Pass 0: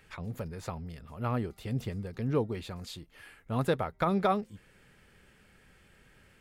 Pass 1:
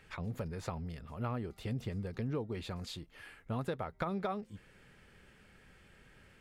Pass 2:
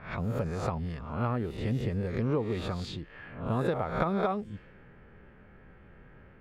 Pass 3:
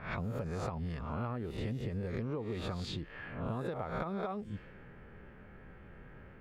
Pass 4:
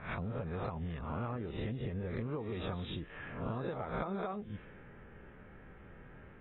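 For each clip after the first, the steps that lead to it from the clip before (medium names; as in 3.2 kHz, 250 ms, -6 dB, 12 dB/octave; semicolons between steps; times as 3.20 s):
treble shelf 10 kHz -8.5 dB; compression 6:1, threshold -33 dBFS, peak gain reduction 11 dB
reverse spectral sustain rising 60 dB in 0.56 s; treble shelf 2.7 kHz -8.5 dB; level-controlled noise filter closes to 1.3 kHz, open at -35.5 dBFS; trim +6.5 dB
compression, threshold -35 dBFS, peak gain reduction 12 dB; trim +1 dB
trim -1.5 dB; AAC 16 kbps 24 kHz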